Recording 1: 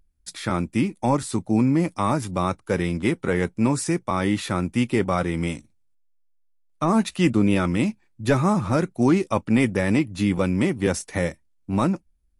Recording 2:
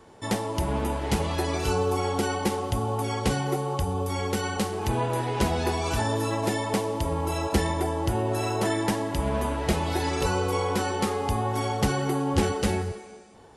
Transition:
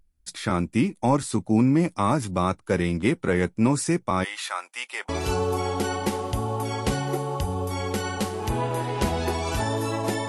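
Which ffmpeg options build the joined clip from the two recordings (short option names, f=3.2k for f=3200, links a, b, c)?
-filter_complex "[0:a]asplit=3[a][b][c];[a]afade=t=out:st=4.23:d=0.02[d];[b]highpass=f=760:w=0.5412,highpass=f=760:w=1.3066,afade=t=in:st=4.23:d=0.02,afade=t=out:st=5.09:d=0.02[e];[c]afade=t=in:st=5.09:d=0.02[f];[d][e][f]amix=inputs=3:normalize=0,apad=whole_dur=10.28,atrim=end=10.28,atrim=end=5.092[g];[1:a]atrim=start=1.478:end=6.67[h];[g][h]acrossfade=d=0.004:c1=hsin:c2=hsin"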